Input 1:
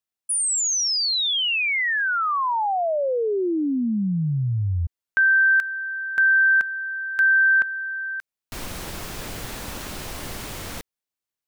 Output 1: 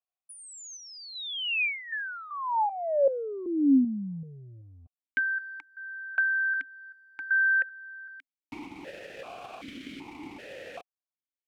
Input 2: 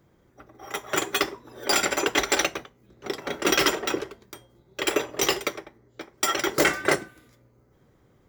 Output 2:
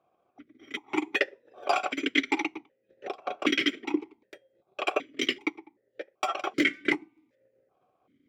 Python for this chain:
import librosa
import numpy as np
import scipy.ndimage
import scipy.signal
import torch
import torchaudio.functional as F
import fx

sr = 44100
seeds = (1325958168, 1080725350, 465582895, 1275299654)

y = fx.transient(x, sr, attack_db=6, sustain_db=-7)
y = fx.dynamic_eq(y, sr, hz=1700.0, q=1.5, threshold_db=-27.0, ratio=4.0, max_db=4)
y = fx.vowel_held(y, sr, hz=2.6)
y = y * librosa.db_to_amplitude(5.0)